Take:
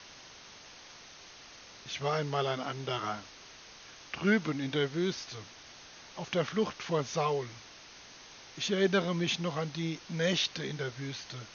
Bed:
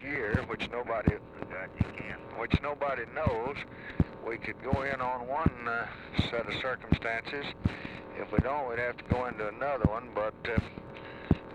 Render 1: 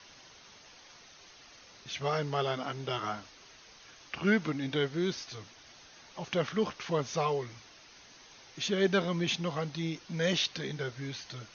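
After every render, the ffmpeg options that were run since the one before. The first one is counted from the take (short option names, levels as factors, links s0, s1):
-af "afftdn=nr=6:nf=-52"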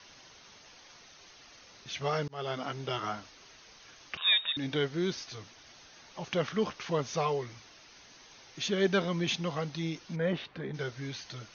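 -filter_complex "[0:a]asettb=1/sr,asplit=3[s0][s1][s2];[s0]atrim=end=4.174[s3];[s1]atrim=start=4.17:end=4.57,asetpts=PTS-STARTPTS,afade=t=in:d=0.004:c=qsin,afade=t=out:st=0.396:d=0.004:c=qsin,lowpass=f=3300:t=q:w=0.5098,lowpass=f=3300:t=q:w=0.6013,lowpass=f=3300:t=q:w=0.9,lowpass=f=3300:t=q:w=2.563,afreqshift=-3900[s4];[s2]atrim=start=4.566[s5];[s3][s4]acrossfade=d=0.004:c1=hsin:c2=qsin[s6];[s6][s5]acrossfade=d=0.004:c1=qsin:c2=hsin,asplit=3[s7][s8][s9];[s7]afade=t=out:st=10.15:d=0.02[s10];[s8]lowpass=1600,afade=t=in:st=10.15:d=0.02,afade=t=out:st=10.73:d=0.02[s11];[s9]afade=t=in:st=10.73:d=0.02[s12];[s10][s11][s12]amix=inputs=3:normalize=0,asplit=2[s13][s14];[s13]atrim=end=2.28,asetpts=PTS-STARTPTS,afade=t=out:st=2.276:d=0.004:c=hsin[s15];[s14]atrim=start=2.28,asetpts=PTS-STARTPTS,afade=t=in:d=0.41:c=qsin[s16];[s15][s16]concat=n=2:v=0:a=1"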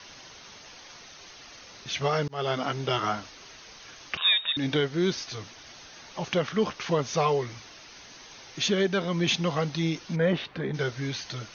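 -af "alimiter=limit=0.0891:level=0:latency=1:release=361,acontrast=86"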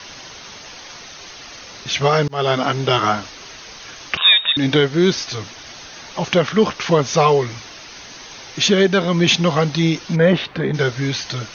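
-af "volume=3.35"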